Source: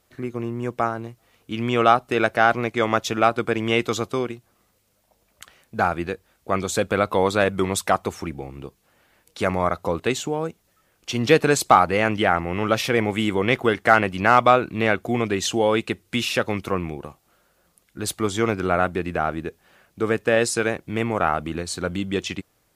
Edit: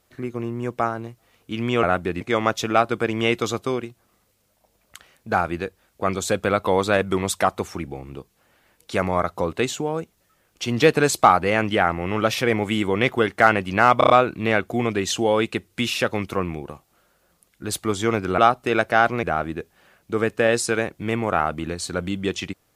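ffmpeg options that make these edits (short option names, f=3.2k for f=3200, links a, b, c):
-filter_complex "[0:a]asplit=9[a][b][c][d][e][f][g][h][i];[a]atrim=end=1.832[j];[b]atrim=start=18.728:end=19.112[k];[c]atrim=start=2.678:end=14.482[l];[d]atrim=start=14.448:end=14.482[m];[e]atrim=start=14.448:end=14.482[n];[f]atrim=start=14.448:end=14.482[o];[g]atrim=start=14.448:end=18.732[p];[h]atrim=start=1.828:end=2.682[q];[i]atrim=start=19.108[r];[j][k]acrossfade=d=0.004:c1=hsin:c2=hsin[s];[s][l]acrossfade=d=0.004:c1=hsin:c2=hsin[t];[t][m]acrossfade=d=0.004:c1=hsin:c2=hsin[u];[u][n]acrossfade=d=0.004:c1=hsin:c2=hsin[v];[v][o]acrossfade=d=0.004:c1=hsin:c2=hsin[w];[w][p]acrossfade=d=0.004:c1=hsin:c2=hsin[x];[x][q]acrossfade=d=0.004:c1=hsin:c2=hsin[y];[y][r]acrossfade=d=0.004:c1=hsin:c2=hsin"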